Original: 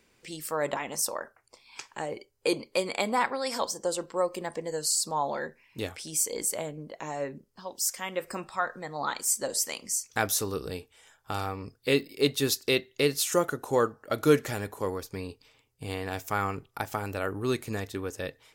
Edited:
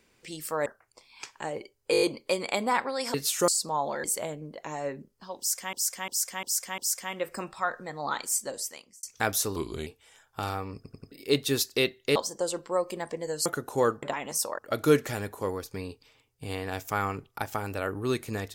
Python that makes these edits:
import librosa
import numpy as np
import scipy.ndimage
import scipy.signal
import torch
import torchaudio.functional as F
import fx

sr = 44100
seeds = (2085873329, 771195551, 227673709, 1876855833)

y = fx.edit(x, sr, fx.move(start_s=0.66, length_s=0.56, to_s=13.98),
    fx.stutter(start_s=2.48, slice_s=0.02, count=6),
    fx.swap(start_s=3.6, length_s=1.3, other_s=13.07, other_length_s=0.34),
    fx.cut(start_s=5.46, length_s=0.94),
    fx.repeat(start_s=7.74, length_s=0.35, count=5),
    fx.fade_out_span(start_s=9.17, length_s=0.82),
    fx.speed_span(start_s=10.52, length_s=0.26, speed=0.85),
    fx.stutter_over(start_s=11.67, slice_s=0.09, count=4), tone=tone)